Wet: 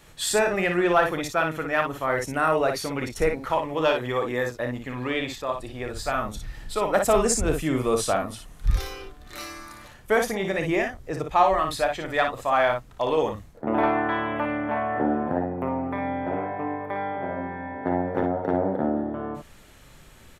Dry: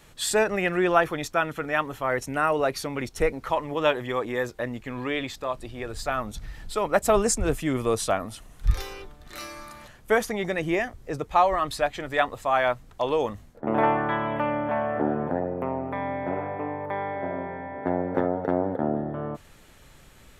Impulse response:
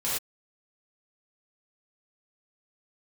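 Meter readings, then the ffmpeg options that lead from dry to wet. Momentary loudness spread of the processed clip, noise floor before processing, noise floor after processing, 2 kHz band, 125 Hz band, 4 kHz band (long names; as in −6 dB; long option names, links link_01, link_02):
12 LU, −52 dBFS, −50 dBFS, +1.5 dB, +1.0 dB, +1.5 dB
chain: -af "acontrast=63,aecho=1:1:31|57:0.266|0.531,volume=-6dB"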